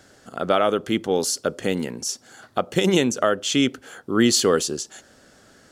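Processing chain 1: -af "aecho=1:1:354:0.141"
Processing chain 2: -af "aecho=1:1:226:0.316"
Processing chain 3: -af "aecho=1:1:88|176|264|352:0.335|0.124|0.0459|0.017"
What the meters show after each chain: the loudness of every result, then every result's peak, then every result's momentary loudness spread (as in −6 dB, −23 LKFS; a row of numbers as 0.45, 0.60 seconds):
−22.0, −22.0, −21.5 LKFS; −6.0, −5.5, −5.5 dBFS; 14, 13, 13 LU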